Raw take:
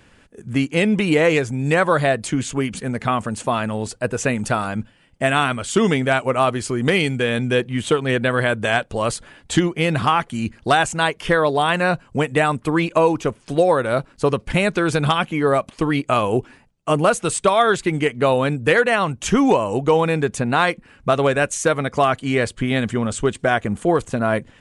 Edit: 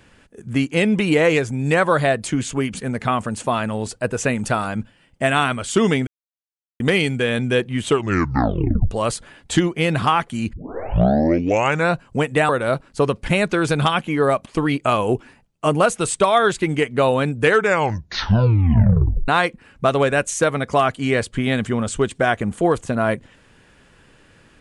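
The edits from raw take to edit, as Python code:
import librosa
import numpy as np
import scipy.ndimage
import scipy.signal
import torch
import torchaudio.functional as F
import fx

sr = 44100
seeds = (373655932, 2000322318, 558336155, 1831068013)

y = fx.edit(x, sr, fx.silence(start_s=6.07, length_s=0.73),
    fx.tape_stop(start_s=7.87, length_s=1.04),
    fx.tape_start(start_s=10.53, length_s=1.41),
    fx.cut(start_s=12.49, length_s=1.24),
    fx.tape_stop(start_s=18.64, length_s=1.88), tone=tone)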